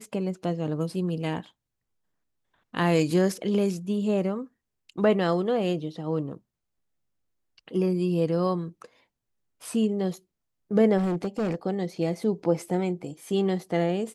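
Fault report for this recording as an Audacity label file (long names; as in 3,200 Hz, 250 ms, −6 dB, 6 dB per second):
10.970000	11.550000	clipping −23 dBFS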